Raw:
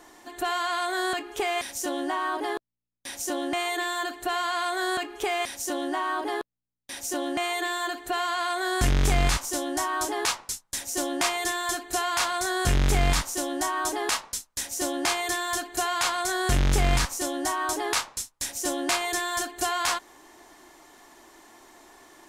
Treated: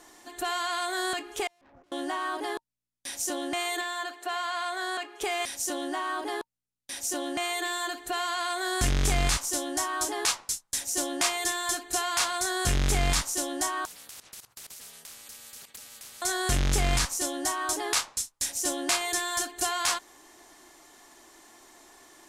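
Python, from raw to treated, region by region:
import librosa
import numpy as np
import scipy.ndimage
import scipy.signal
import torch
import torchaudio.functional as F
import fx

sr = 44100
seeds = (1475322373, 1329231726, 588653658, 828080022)

y = fx.chain(x, sr, fx.lowpass(hz=1200.0, slope=24),
    fx.tube_stage(drive_db=49.0, bias=0.75),
    fx.over_compress(threshold_db=-56.0, ratio=-0.5), at=(1.47, 1.92))
y = fx.chain(y, sr, fx.highpass(hz=450.0, slope=12),
    fx.high_shelf(hz=4900.0, db=-9.5), at=(3.81, 5.21))
y = fx.chain(y, sr, fx.level_steps(step_db=20),
    fx.ring_mod(carrier_hz=120.0),
    fx.spectral_comp(ratio=10.0), at=(13.85, 16.22))
y = scipy.signal.sosfilt(scipy.signal.bessel(2, 11000.0, 'lowpass', norm='mag', fs=sr, output='sos'), y)
y = fx.high_shelf(y, sr, hz=4500.0, db=9.0)
y = fx.notch(y, sr, hz=920.0, q=30.0)
y = y * 10.0 ** (-3.5 / 20.0)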